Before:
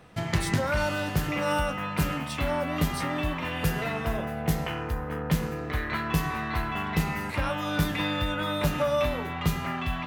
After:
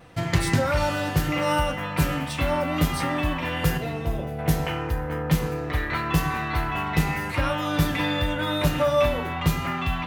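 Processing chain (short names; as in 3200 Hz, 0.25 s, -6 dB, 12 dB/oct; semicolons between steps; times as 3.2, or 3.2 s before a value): 3.77–4.39 EQ curve 420 Hz 0 dB, 1500 Hz -12 dB, 3600 Hz -5 dB; vibrato 0.84 Hz 17 cents; notch comb 210 Hz; Schroeder reverb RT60 0.44 s, combs from 26 ms, DRR 13.5 dB; gain +4.5 dB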